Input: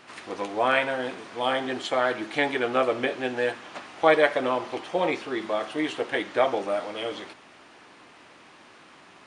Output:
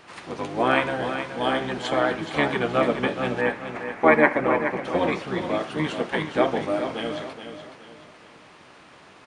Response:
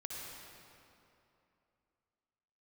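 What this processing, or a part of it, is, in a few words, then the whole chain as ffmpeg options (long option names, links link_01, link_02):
octave pedal: -filter_complex "[0:a]asettb=1/sr,asplit=3[link_01][link_02][link_03];[link_01]atrim=end=3.414[link_04];[link_02]atrim=start=3.41:end=4.85,asetpts=PTS-STARTPTS,afade=type=in:duration=0.004:curve=qsin,afade=type=out:start_time=1.436:duration=0.004:curve=qsin,highshelf=frequency=2700:width_type=q:width=3:gain=-7[link_05];[link_03]atrim=start=4.846[link_06];[link_04][link_05]acrossfade=duration=0.004:curve1=hsin:curve2=qsin[link_07];[link_07][link_06]acrossfade=duration=0.004:curve1=qsin:curve2=hsin,asplit=2[link_08][link_09];[link_09]asetrate=22050,aresample=44100,atempo=2,volume=-4dB[link_10];[link_08][link_10]amix=inputs=2:normalize=0,aecho=1:1:423|846|1269|1692:0.355|0.124|0.0435|0.0152"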